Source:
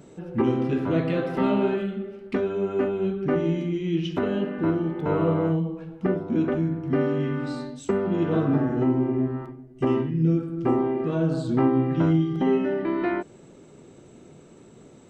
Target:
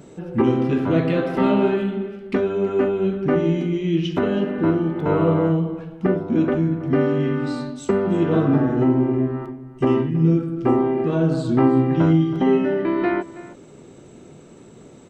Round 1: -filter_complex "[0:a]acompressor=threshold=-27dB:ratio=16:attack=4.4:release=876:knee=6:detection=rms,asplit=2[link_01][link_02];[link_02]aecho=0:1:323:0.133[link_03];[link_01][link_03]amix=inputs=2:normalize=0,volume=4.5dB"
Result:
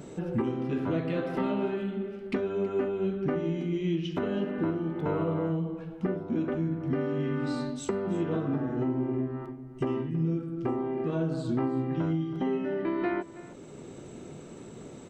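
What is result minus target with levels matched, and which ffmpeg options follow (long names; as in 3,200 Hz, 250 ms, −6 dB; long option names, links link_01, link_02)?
downward compressor: peak gain reduction +14 dB
-filter_complex "[0:a]asplit=2[link_01][link_02];[link_02]aecho=0:1:323:0.133[link_03];[link_01][link_03]amix=inputs=2:normalize=0,volume=4.5dB"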